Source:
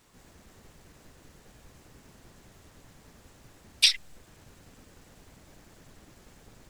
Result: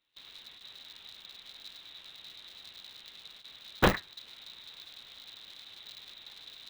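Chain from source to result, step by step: added harmonics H 3 -13 dB, 5 -7 dB, 6 -8 dB, 8 -10 dB, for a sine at -4.5 dBFS; flange 0.67 Hz, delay 7.8 ms, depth 6.4 ms, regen -67%; gate with hold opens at -42 dBFS; inverted band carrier 3900 Hz; polarity switched at an audio rate 100 Hz

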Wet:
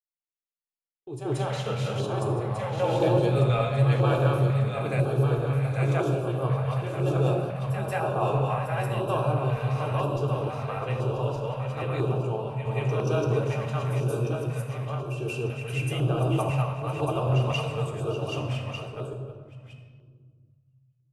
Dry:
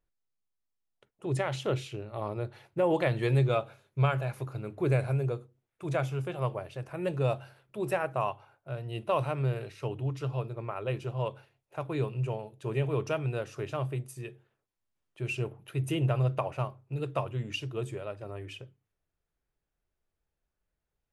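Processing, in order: regenerating reverse delay 0.598 s, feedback 56%, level -2 dB; gate -38 dBFS, range -47 dB; reverb RT60 1.7 s, pre-delay 3 ms, DRR 0.5 dB; LFO notch square 1 Hz 350–2000 Hz; reverse echo 0.181 s -8 dB

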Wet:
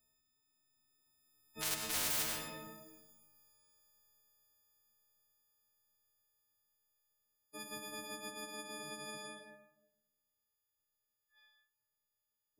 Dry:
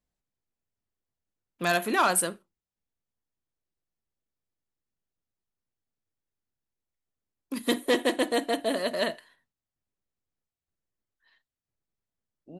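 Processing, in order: frequency quantiser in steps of 6 st; Doppler pass-by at 2.58, 6 m/s, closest 1.3 m; in parallel at -0.5 dB: compressor 4:1, threshold -42 dBFS, peak gain reduction 22 dB; on the sum: hard clip -25 dBFS, distortion -4 dB; on a send at -8 dB: reverb RT60 0.85 s, pre-delay 94 ms; on the sum: spectral compressor 10:1

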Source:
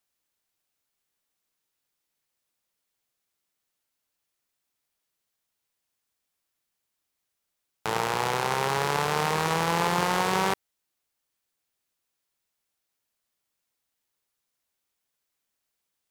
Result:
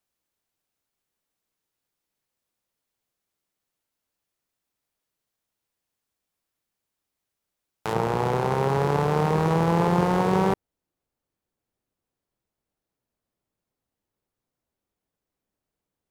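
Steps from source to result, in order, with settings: tilt shelf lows +3.5 dB, from 7.92 s lows +10 dB

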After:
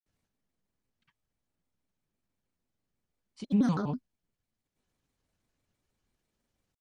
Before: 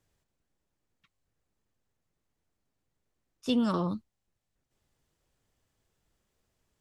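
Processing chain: grains; small resonant body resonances 220/2000/3600 Hz, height 7 dB; shaped vibrato square 6.1 Hz, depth 250 cents; gain -3 dB

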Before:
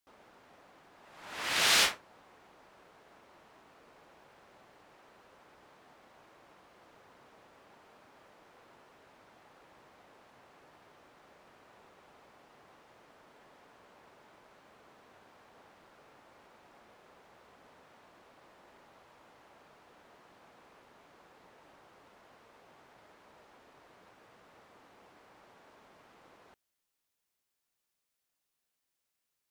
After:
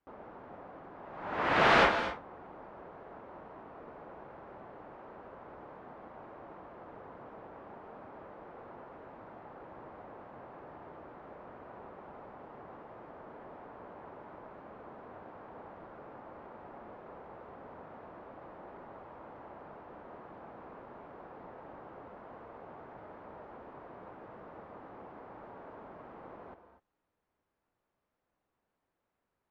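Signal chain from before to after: LPF 1100 Hz 12 dB/oct; non-linear reverb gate 0.27 s rising, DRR 9.5 dB; gain +12 dB

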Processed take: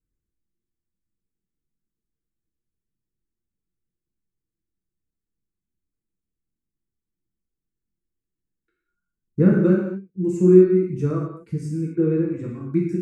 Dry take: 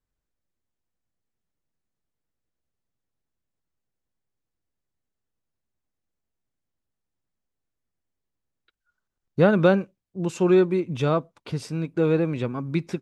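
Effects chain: high shelf 6600 Hz -11.5 dB; reverb removal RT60 1.8 s; EQ curve 400 Hz 0 dB, 710 Hz -23 dB, 1500 Hz -10 dB, 2200 Hz -11 dB, 3300 Hz -28 dB, 7300 Hz -1 dB; non-linear reverb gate 0.28 s falling, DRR -4 dB

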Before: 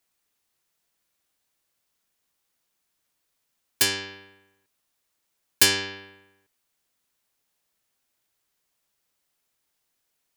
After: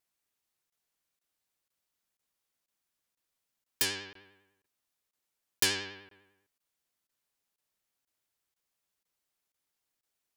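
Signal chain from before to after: vibrato 10 Hz 65 cents; crackling interface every 0.49 s, samples 1024, zero, from 0.7; gain -8 dB

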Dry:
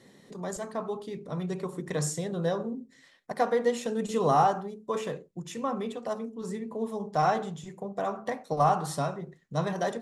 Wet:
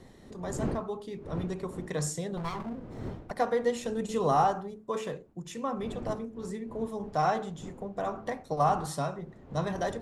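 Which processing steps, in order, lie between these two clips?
2.37–3.31 minimum comb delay 0.93 ms; wind noise 320 Hz -42 dBFS; gain -2 dB

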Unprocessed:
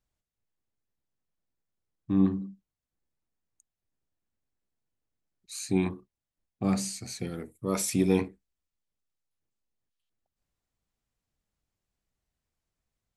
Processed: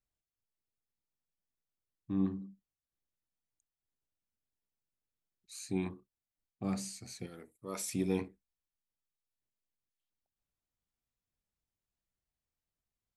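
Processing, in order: 7.26–7.88 low shelf 290 Hz -10.5 dB; ending taper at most 460 dB/s; gain -8.5 dB

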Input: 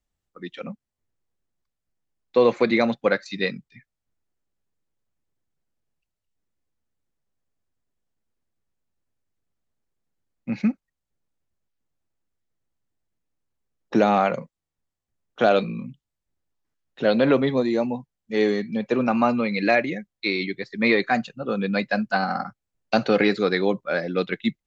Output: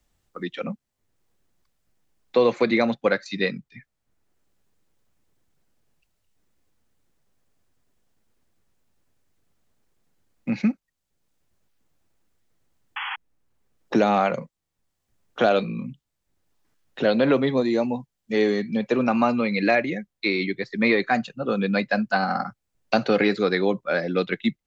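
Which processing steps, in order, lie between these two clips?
painted sound noise, 12.96–13.16, 770–3400 Hz -35 dBFS; three-band squash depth 40%

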